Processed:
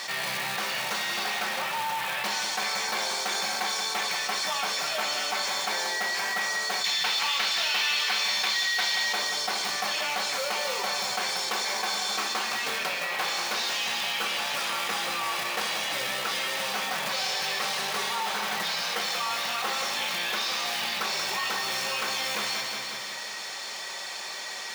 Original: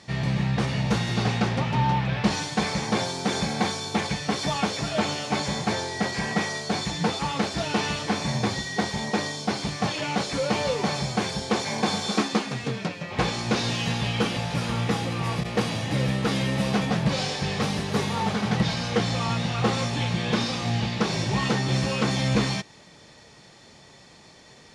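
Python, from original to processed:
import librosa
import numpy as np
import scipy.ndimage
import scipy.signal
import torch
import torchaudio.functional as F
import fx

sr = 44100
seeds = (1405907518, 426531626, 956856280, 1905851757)

y = fx.rider(x, sr, range_db=10, speed_s=0.5)
y = fx.peak_eq(y, sr, hz=3200.0, db=13.0, octaves=2.3, at=(6.84, 9.13))
y = fx.quant_float(y, sr, bits=2)
y = scipy.signal.sosfilt(scipy.signal.butter(2, 880.0, 'highpass', fs=sr, output='sos'), y)
y = fx.echo_feedback(y, sr, ms=181, feedback_pct=44, wet_db=-10.5)
y = fx.room_shoebox(y, sr, seeds[0], volume_m3=1900.0, walls='furnished', distance_m=1.1)
y = fx.env_flatten(y, sr, amount_pct=70)
y = y * librosa.db_to_amplitude(-8.0)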